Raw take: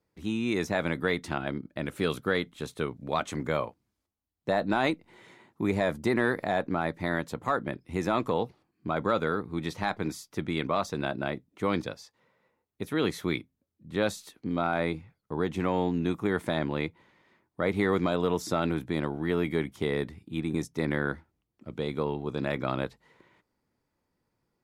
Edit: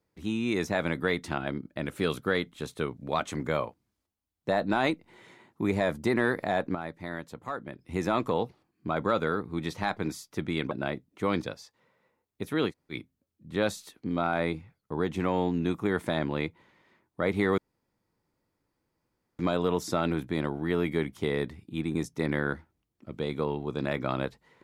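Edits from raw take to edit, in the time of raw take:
6.75–7.79 s: gain -7.5 dB
10.71–11.11 s: delete
13.09–13.34 s: room tone, crossfade 0.10 s
17.98 s: insert room tone 1.81 s

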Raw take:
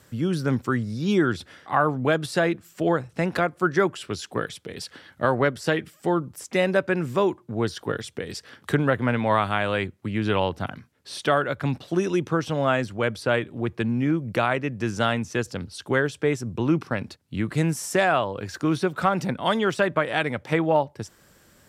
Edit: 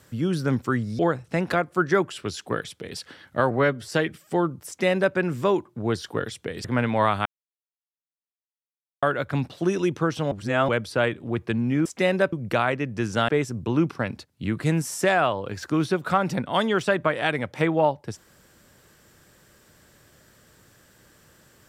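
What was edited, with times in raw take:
0.99–2.84 s: delete
5.36–5.61 s: stretch 1.5×
6.40–6.87 s: copy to 14.16 s
8.37–8.95 s: delete
9.56–11.33 s: mute
12.62–12.99 s: reverse
15.12–16.20 s: delete

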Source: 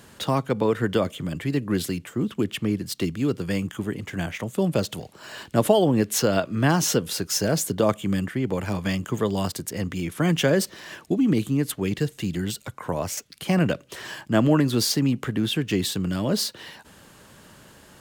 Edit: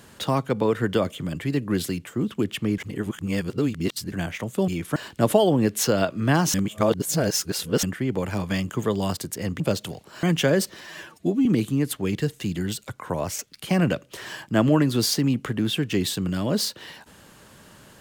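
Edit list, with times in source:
2.78–4.12 s: reverse
4.68–5.31 s: swap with 9.95–10.23 s
6.89–8.18 s: reverse
10.81–11.24 s: stretch 1.5×

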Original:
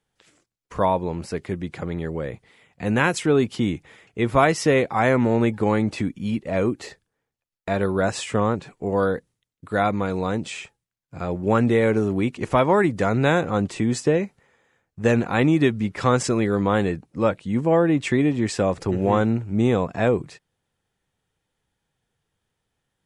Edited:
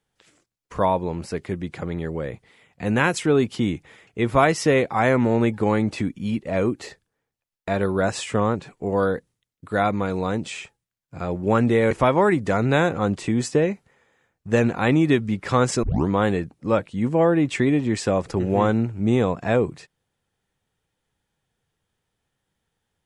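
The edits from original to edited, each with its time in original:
11.91–12.43 s: delete
16.35 s: tape start 0.25 s

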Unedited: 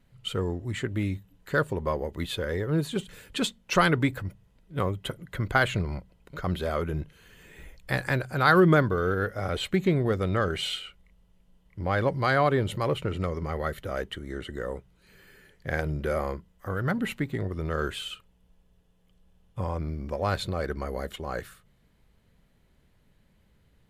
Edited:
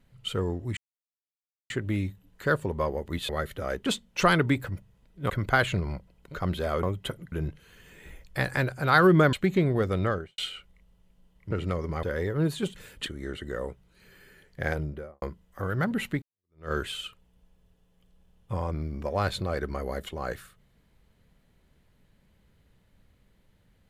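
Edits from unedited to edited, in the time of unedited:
0.77 s: insert silence 0.93 s
2.36–3.39 s: swap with 13.56–14.13 s
4.83–5.32 s: move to 6.85 s
8.86–9.63 s: delete
10.32–10.68 s: studio fade out
11.81–13.04 s: delete
15.74–16.29 s: studio fade out
17.29–17.78 s: fade in exponential

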